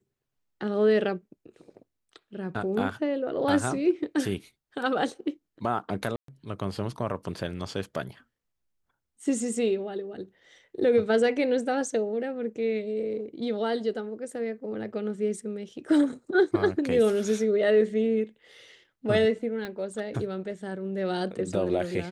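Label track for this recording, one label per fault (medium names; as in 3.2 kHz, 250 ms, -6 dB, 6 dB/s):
6.160000	6.280000	dropout 123 ms
19.650000	19.650000	pop -21 dBFS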